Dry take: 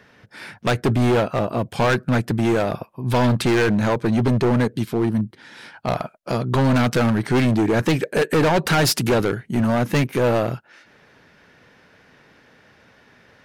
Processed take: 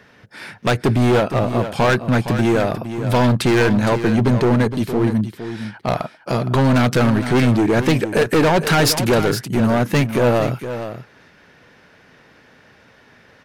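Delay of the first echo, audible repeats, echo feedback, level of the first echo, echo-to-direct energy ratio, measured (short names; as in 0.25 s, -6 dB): 0.464 s, 1, no steady repeat, -10.5 dB, -10.5 dB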